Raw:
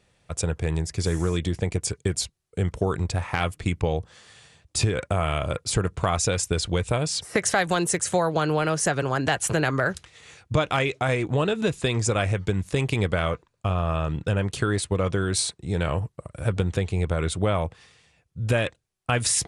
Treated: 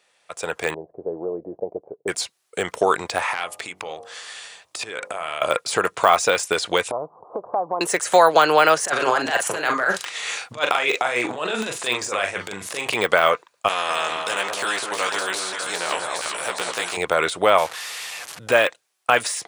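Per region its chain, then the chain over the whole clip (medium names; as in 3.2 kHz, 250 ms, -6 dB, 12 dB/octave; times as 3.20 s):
0.74–2.08 s: steep low-pass 670 Hz + tilt EQ +3 dB/octave
3.32–5.42 s: compression 8:1, threshold -33 dBFS + de-hum 46.82 Hz, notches 27
6.91–7.81 s: steep low-pass 1.1 kHz 72 dB/octave + compression 2:1, threshold -36 dBFS
8.84–12.94 s: compressor with a negative ratio -28 dBFS, ratio -0.5 + high-pass 52 Hz + doubling 41 ms -6 dB
13.68–16.97 s: chorus 1.1 Hz, delay 15 ms, depth 2.4 ms + echo whose repeats swap between lows and highs 202 ms, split 1.1 kHz, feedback 59%, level -6 dB + spectrum-flattening compressor 2:1
17.58–18.39 s: one-bit delta coder 64 kbps, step -39 dBFS + peaking EQ 320 Hz -4.5 dB 2.1 oct
whole clip: de-esser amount 95%; high-pass 670 Hz 12 dB/octave; level rider gain up to 10 dB; trim +4 dB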